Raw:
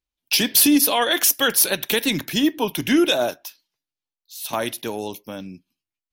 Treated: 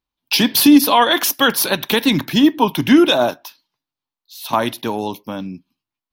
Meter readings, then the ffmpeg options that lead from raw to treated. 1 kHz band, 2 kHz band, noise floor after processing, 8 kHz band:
+9.0 dB, +4.0 dB, below −85 dBFS, −3.0 dB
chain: -af "equalizer=frequency=125:width_type=o:width=1:gain=7,equalizer=frequency=250:width_type=o:width=1:gain=7,equalizer=frequency=1000:width_type=o:width=1:gain=11,equalizer=frequency=4000:width_type=o:width=1:gain=5,equalizer=frequency=8000:width_type=o:width=1:gain=-6"

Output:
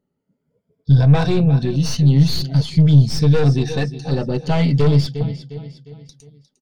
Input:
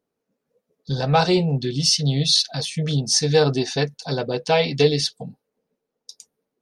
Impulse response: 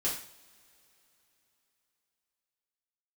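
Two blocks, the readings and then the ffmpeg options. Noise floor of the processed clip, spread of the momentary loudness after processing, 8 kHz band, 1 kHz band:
−75 dBFS, 12 LU, −10.0 dB, −4.5 dB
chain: -filter_complex "[0:a]afftfilt=real='re*pow(10,11/40*sin(2*PI*(1.7*log(max(b,1)*sr/1024/100)/log(2)-(0.46)*(pts-256)/sr)))':imag='im*pow(10,11/40*sin(2*PI*(1.7*log(max(b,1)*sr/1024/100)/log(2)-(0.46)*(pts-256)/sr)))':win_size=1024:overlap=0.75,asplit=2[link_01][link_02];[link_02]aecho=0:1:355|710|1065|1420:0.168|0.0722|0.031|0.0133[link_03];[link_01][link_03]amix=inputs=2:normalize=0,aeval=exprs='(tanh(6.31*val(0)+0.3)-tanh(0.3))/6.31':channel_layout=same,bass=frequency=250:gain=15,treble=frequency=4000:gain=-8,volume=-1dB"

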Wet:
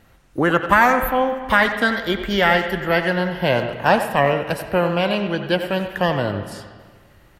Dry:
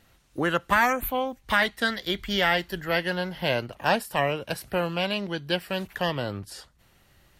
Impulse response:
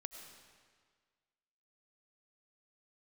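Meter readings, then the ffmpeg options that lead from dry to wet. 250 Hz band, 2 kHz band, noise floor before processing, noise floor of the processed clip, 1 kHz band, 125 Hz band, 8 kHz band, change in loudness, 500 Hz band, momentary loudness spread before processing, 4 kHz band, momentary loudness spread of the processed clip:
+8.5 dB, +6.5 dB, −62 dBFS, −52 dBFS, +8.0 dB, +8.0 dB, +1.5 dB, +7.0 dB, +8.5 dB, 9 LU, +2.5 dB, 7 LU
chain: -filter_complex "[0:a]asplit=2[link_01][link_02];[link_02]adelay=90,highpass=300,lowpass=3400,asoftclip=type=hard:threshold=-17.5dB,volume=-9dB[link_03];[link_01][link_03]amix=inputs=2:normalize=0,asplit=2[link_04][link_05];[1:a]atrim=start_sample=2205,lowpass=2500[link_06];[link_05][link_06]afir=irnorm=-1:irlink=0,volume=4.5dB[link_07];[link_04][link_07]amix=inputs=2:normalize=0,volume=2dB"

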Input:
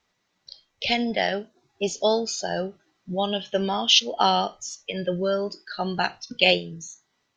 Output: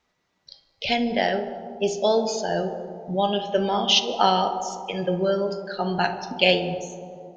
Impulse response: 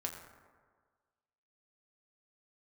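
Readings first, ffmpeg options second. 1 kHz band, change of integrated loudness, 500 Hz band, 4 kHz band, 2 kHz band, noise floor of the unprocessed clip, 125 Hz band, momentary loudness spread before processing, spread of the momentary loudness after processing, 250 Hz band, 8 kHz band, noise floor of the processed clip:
+2.5 dB, +0.5 dB, +2.5 dB, −1.5 dB, −0.5 dB, −74 dBFS, +2.5 dB, 14 LU, 11 LU, +2.0 dB, −2.5 dB, −73 dBFS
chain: -filter_complex "[0:a]asplit=2[link_01][link_02];[1:a]atrim=start_sample=2205,asetrate=26019,aresample=44100,highshelf=frequency=3500:gain=-12[link_03];[link_02][link_03]afir=irnorm=-1:irlink=0,volume=0.5dB[link_04];[link_01][link_04]amix=inputs=2:normalize=0,volume=-5dB"

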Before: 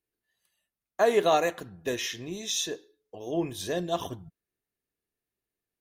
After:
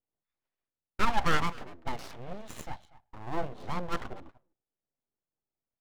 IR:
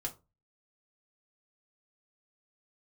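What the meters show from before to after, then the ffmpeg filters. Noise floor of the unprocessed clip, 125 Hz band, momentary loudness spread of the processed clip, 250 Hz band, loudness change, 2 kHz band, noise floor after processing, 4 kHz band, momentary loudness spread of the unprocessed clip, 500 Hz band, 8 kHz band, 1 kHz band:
below −85 dBFS, +1.0 dB, 18 LU, −5.5 dB, −5.5 dB, −0.5 dB, below −85 dBFS, −8.0 dB, 18 LU, −13.0 dB, −14.5 dB, −1.5 dB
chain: -filter_complex "[0:a]adynamicsmooth=sensitivity=2:basefreq=1000,asplit=2[link_01][link_02];[link_02]adelay=240,highpass=300,lowpass=3400,asoftclip=type=hard:threshold=-21dB,volume=-18dB[link_03];[link_01][link_03]amix=inputs=2:normalize=0,aeval=exprs='abs(val(0))':channel_layout=same"

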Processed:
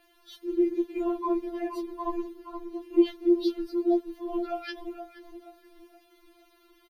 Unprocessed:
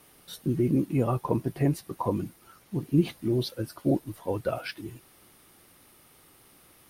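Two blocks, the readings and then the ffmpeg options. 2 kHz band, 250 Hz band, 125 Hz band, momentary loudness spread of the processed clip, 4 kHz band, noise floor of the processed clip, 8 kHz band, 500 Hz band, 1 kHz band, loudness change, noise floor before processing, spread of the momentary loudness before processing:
−3.0 dB, +1.0 dB, below −35 dB, 16 LU, −3.0 dB, −63 dBFS, below −10 dB, +2.0 dB, 0.0 dB, −0.5 dB, −58 dBFS, 11 LU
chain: -filter_complex "[0:a]asplit=2[link_01][link_02];[link_02]adelay=473,lowpass=frequency=900:poles=1,volume=-7dB,asplit=2[link_03][link_04];[link_04]adelay=473,lowpass=frequency=900:poles=1,volume=0.47,asplit=2[link_05][link_06];[link_06]adelay=473,lowpass=frequency=900:poles=1,volume=0.47,asplit=2[link_07][link_08];[link_08]adelay=473,lowpass=frequency=900:poles=1,volume=0.47,asplit=2[link_09][link_10];[link_10]adelay=473,lowpass=frequency=900:poles=1,volume=0.47,asplit=2[link_11][link_12];[link_12]adelay=473,lowpass=frequency=900:poles=1,volume=0.47[link_13];[link_01][link_03][link_05][link_07][link_09][link_11][link_13]amix=inputs=7:normalize=0,tremolo=f=93:d=0.824,highshelf=frequency=6700:width_type=q:width=1.5:gain=-6.5,bandreject=frequency=5300:width=12,asplit=2[link_14][link_15];[link_15]aeval=exprs='clip(val(0),-1,0.106)':channel_layout=same,volume=-5dB[link_16];[link_14][link_16]amix=inputs=2:normalize=0,equalizer=frequency=9400:width_type=o:width=1.4:gain=-6.5,afftfilt=real='re*4*eq(mod(b,16),0)':imag='im*4*eq(mod(b,16),0)':win_size=2048:overlap=0.75"

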